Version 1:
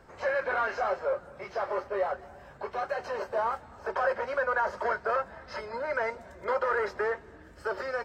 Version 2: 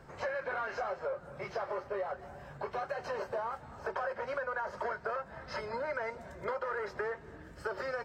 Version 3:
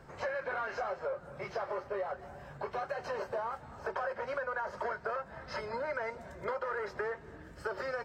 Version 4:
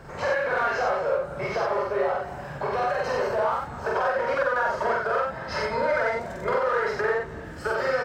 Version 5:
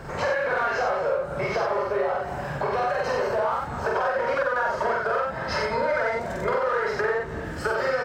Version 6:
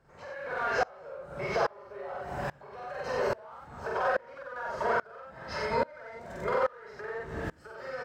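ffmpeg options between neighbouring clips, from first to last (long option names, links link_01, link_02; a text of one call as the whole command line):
ffmpeg -i in.wav -af "equalizer=frequency=140:width=2.3:gain=8.5,acompressor=threshold=-33dB:ratio=6" out.wav
ffmpeg -i in.wav -af anull out.wav
ffmpeg -i in.wav -filter_complex "[0:a]asplit=2[link_01][link_02];[link_02]asoftclip=type=hard:threshold=-38dB,volume=-9.5dB[link_03];[link_01][link_03]amix=inputs=2:normalize=0,aecho=1:1:46.65|90.38:0.891|0.794,volume=6.5dB" out.wav
ffmpeg -i in.wav -af "acompressor=threshold=-32dB:ratio=2,volume=6dB" out.wav
ffmpeg -i in.wav -af "aeval=exprs='val(0)*pow(10,-28*if(lt(mod(-1.2*n/s,1),2*abs(-1.2)/1000),1-mod(-1.2*n/s,1)/(2*abs(-1.2)/1000),(mod(-1.2*n/s,1)-2*abs(-1.2)/1000)/(1-2*abs(-1.2)/1000))/20)':channel_layout=same" out.wav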